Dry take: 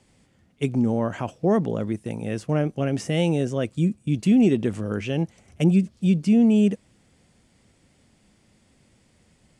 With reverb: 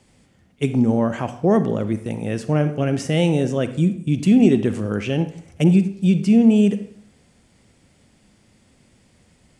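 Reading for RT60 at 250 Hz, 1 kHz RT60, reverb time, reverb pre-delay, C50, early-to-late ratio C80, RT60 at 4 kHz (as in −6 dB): 0.65 s, 0.65 s, 0.65 s, 37 ms, 11.5 dB, 15.0 dB, 0.50 s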